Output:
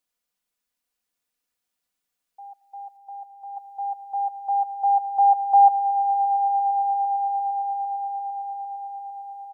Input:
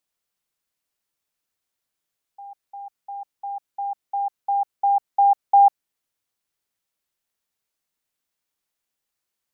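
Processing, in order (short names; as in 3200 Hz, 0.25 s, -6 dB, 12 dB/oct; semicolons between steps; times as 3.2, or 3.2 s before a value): comb 4.1 ms, depth 55%; 2.97–3.57 level quantiser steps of 9 dB; on a send: swelling echo 0.114 s, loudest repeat 8, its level -15.5 dB; on the sum: gain -2 dB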